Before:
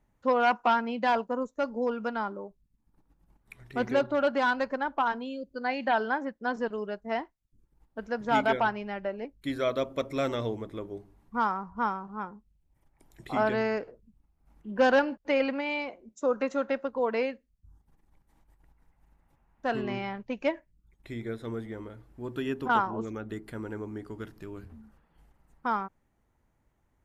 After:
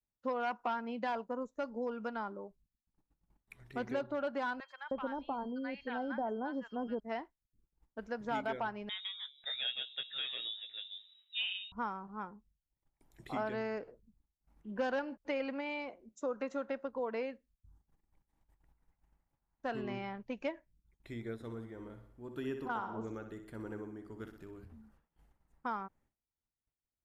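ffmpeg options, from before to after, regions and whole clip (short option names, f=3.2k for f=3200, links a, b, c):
-filter_complex "[0:a]asettb=1/sr,asplit=3[a][b][c];[a]atrim=end=4.604[d];[b]atrim=start=4.6:end=7,asetpts=PTS-STARTPTS,afade=t=in:d=0.004:c=qsin,afade=t=out:st=2.396:d=0.004:c=qsin,aeval=exprs='val(0)+0.00224*sin(2*PI*3200*n/s)':c=same,tiltshelf=f=720:g=5.5,acrossover=split=1100|5300[e][f][g];[g]adelay=80[h];[e]adelay=310[i];[i][f][h]amix=inputs=3:normalize=0,atrim=end_sample=105840[j];[c]atrim=start=6.996[k];[d][j]acrossfade=d=0.004:c1=hsin:c2=qsin[l];[l][k]acrossfade=d=0.004:c1=qsin:c2=hsin,asettb=1/sr,asplit=3[m][n][o];[m]atrim=end=8.894[p];[n]atrim=start=8.89:end=11.72,asetpts=PTS-STARTPTS,afade=t=in:d=0.004:c=qsin,afade=t=out:st=2.826:d=0.004:c=qsin,asplit=2[q][r];[r]adelay=16,volume=-7dB[s];[q][s]amix=inputs=2:normalize=0,atrim=end_sample=124803,bandreject=f=142.1:t=h:w=4,bandreject=f=284.2:t=h:w=4,bandreject=f=426.3:t=h:w=4,bandreject=f=568.4:t=h:w=4,bandreject=f=710.5:t=h:w=4,bandreject=f=852.6:t=h:w=4,bandreject=f=994.7:t=h:w=4,bandreject=f=1.1368k:t=h:w=4,bandreject=f=1.2789k:t=h:w=4,bandreject=f=1.421k:t=h:w=4,bandreject=f=1.5631k:t=h:w=4,bandreject=f=1.7052k:t=h:w=4,lowpass=f=3.3k:t=q:w=0.5098,lowpass=f=3.3k:t=q:w=0.6013,lowpass=f=3.3k:t=q:w=0.9,lowpass=f=3.3k:t=q:w=2.563,afreqshift=-3900[t];[o]atrim=start=11.716[u];[p][t]acrossfade=d=0.004:c1=hsin:c2=qsin[v];[v][u]acrossfade=d=0.004:c1=qsin:c2=hsin,asettb=1/sr,asplit=3[w][x][y];[w]atrim=end=21.344[z];[x]atrim=start=21.34:end=24.63,asetpts=PTS-STARTPTS,afade=t=in:d=0.004:c=qsin,afade=t=out:st=3.286:d=0.004:c=qsin,equalizer=f=3.1k:t=o:w=1.5:g=-3,tremolo=f=1.7:d=0.41,aecho=1:1:62|124|186|248|310|372:0.355|0.181|0.0923|0.0471|0.024|0.0122,atrim=end_sample=145089[aa];[y]atrim=start=24.626[ab];[z][aa]acrossfade=d=0.004:c1=hsin:c2=qsin[ac];[ac][ab]acrossfade=d=0.004:c1=qsin:c2=hsin,agate=range=-33dB:threshold=-57dB:ratio=3:detection=peak,acompressor=threshold=-28dB:ratio=2.5,adynamicequalizer=threshold=0.00794:dfrequency=1800:dqfactor=0.7:tfrequency=1800:tqfactor=0.7:attack=5:release=100:ratio=0.375:range=2:mode=cutabove:tftype=highshelf,volume=-6dB"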